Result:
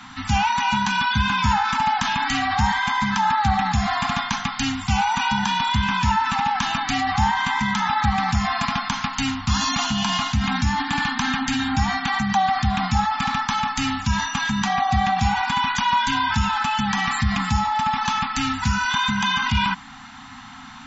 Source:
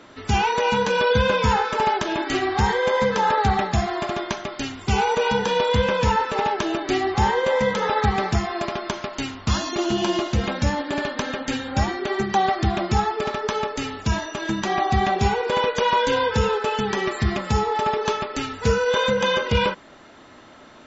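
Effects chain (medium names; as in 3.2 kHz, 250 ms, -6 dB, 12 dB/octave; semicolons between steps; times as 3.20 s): Chebyshev band-stop 270–740 Hz, order 5; in parallel at -0.5 dB: compressor with a negative ratio -31 dBFS, ratio -1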